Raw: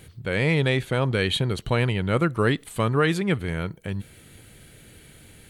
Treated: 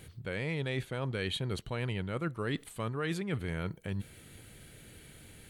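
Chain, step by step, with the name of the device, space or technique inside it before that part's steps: compression on the reversed sound (reverse; compression, threshold -27 dBFS, peak gain reduction 11.5 dB; reverse); trim -4 dB

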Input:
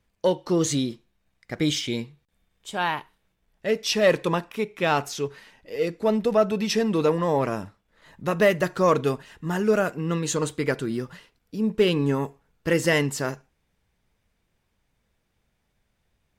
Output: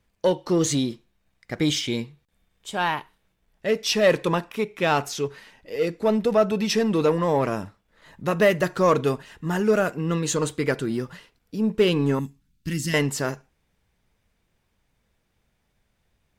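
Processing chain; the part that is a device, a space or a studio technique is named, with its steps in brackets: parallel distortion (in parallel at -13 dB: hard clipper -23.5 dBFS, distortion -7 dB); 12.19–12.94 s: on the sum: FFT filter 270 Hz 0 dB, 500 Hz -28 dB, 4.1 kHz -1 dB

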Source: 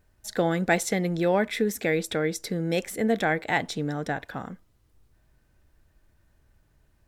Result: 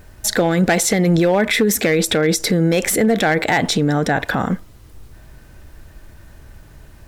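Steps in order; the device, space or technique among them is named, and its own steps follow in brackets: loud club master (compression 2:1, threshold -26 dBFS, peak gain reduction 6 dB; hard clipper -20.5 dBFS, distortion -20 dB; loudness maximiser +29 dB); trim -7.5 dB

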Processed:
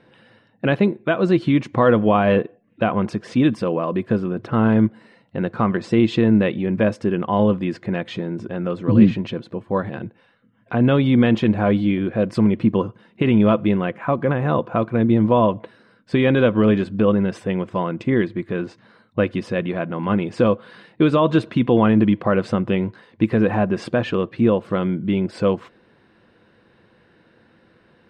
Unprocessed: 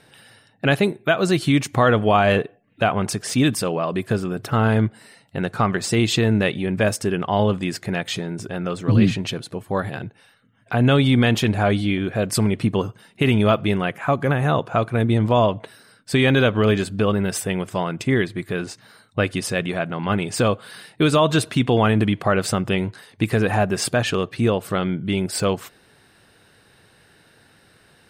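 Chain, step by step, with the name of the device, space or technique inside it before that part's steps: inside a cardboard box (low-pass 3 kHz 12 dB/octave; small resonant body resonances 220/330/500/1000 Hz, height 9 dB, ringing for 45 ms); trim -3.5 dB

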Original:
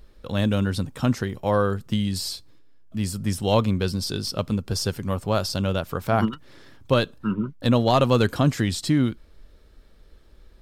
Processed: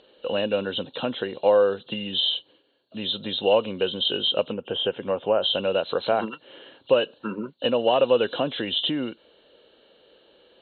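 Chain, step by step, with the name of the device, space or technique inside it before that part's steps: 4.44–5.44 s: low-pass that closes with the level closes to 1.9 kHz, closed at -18.5 dBFS; hearing aid with frequency lowering (knee-point frequency compression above 2.7 kHz 4:1; compression 3:1, threshold -24 dBFS, peak gain reduction 8 dB; cabinet simulation 390–6300 Hz, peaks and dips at 510 Hz +7 dB, 1.2 kHz -7 dB, 2 kHz -8 dB); trim +6 dB

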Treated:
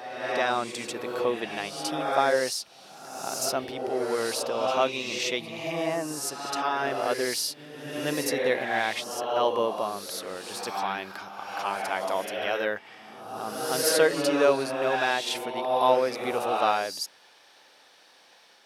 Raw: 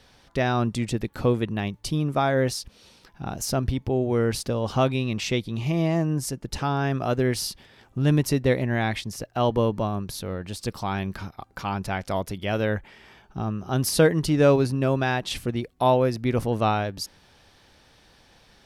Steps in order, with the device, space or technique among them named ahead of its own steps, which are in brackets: ghost voice (reverse; reverberation RT60 1.4 s, pre-delay 41 ms, DRR 2.5 dB; reverse; high-pass 510 Hz 12 dB/octave)

